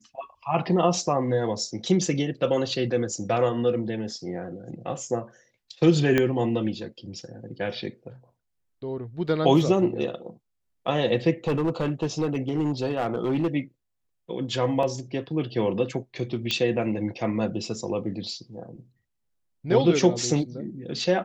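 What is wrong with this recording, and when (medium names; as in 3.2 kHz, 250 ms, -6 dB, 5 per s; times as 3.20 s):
6.18 s: pop -9 dBFS
11.47–13.55 s: clipped -20 dBFS
14.83 s: dropout 2 ms
16.51 s: pop -11 dBFS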